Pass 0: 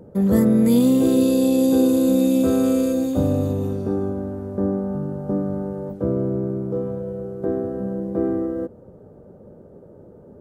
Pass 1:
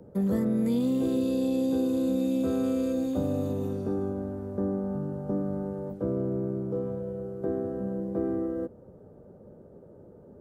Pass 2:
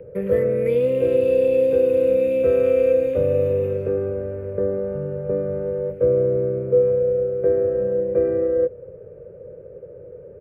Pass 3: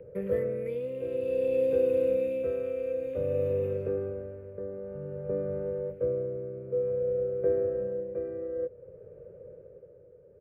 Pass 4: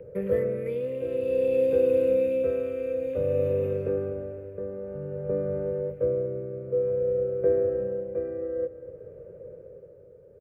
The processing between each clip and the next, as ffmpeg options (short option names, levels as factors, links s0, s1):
-filter_complex "[0:a]acrossover=split=140|5400[s0][s1][s2];[s0]acompressor=threshold=0.0224:ratio=4[s3];[s1]acompressor=threshold=0.112:ratio=4[s4];[s2]acompressor=threshold=0.00282:ratio=4[s5];[s3][s4][s5]amix=inputs=3:normalize=0,volume=0.531"
-af "firequalizer=gain_entry='entry(140,0);entry(230,-16);entry(500,12);entry(750,-12);entry(1600,2);entry(2400,11);entry(3700,-14);entry(7400,-18);entry(11000,-9)':delay=0.05:min_phase=1,volume=2.11"
-af "tremolo=f=0.54:d=0.6,volume=0.422"
-af "aecho=1:1:252|504|756|1008|1260|1512:0.141|0.0833|0.0492|0.029|0.0171|0.0101,volume=1.5"